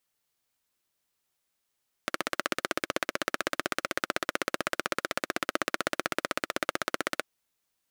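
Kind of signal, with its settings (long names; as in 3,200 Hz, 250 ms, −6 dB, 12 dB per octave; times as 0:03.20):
pulse-train model of a single-cylinder engine, steady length 5.15 s, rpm 1,900, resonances 350/560/1,300 Hz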